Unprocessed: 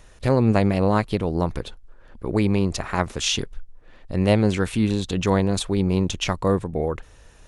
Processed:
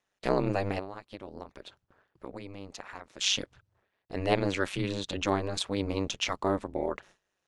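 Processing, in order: gate with hold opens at -35 dBFS; HPF 500 Hz 6 dB/oct; bell 10000 Hz -9 dB 0.68 oct; 0.79–3.21 compressor 6:1, threshold -37 dBFS, peak gain reduction 18.5 dB; ring modulator 98 Hz

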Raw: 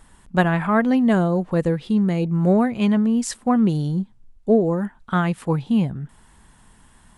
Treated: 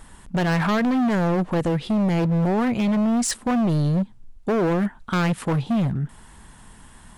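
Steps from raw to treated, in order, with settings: limiter -14.5 dBFS, peak gain reduction 10 dB; overloaded stage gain 24 dB; gain +5.5 dB

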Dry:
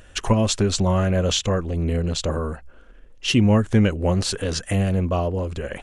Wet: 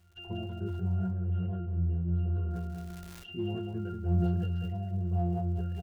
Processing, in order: tracing distortion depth 0.088 ms; reverb removal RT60 0.6 s; treble ducked by the level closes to 1800 Hz, closed at -17.5 dBFS; octave resonator F, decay 0.64 s; in parallel at -9.5 dB: hard clip -33 dBFS, distortion -8 dB; on the sum: crackle 310/s -59 dBFS; 0.93–2.51 air absorption 480 m; on a send: feedback echo 0.188 s, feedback 25%, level -6 dB; on the sum: sustainer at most 22 dB/s

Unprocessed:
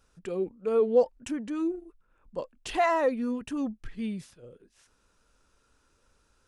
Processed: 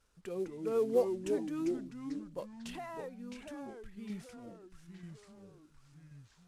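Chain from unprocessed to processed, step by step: CVSD 64 kbps; 2.54–4.1 compressor 3:1, threshold -40 dBFS, peak gain reduction 14.5 dB; echoes that change speed 0.158 s, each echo -3 st, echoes 3, each echo -6 dB; gain -7 dB

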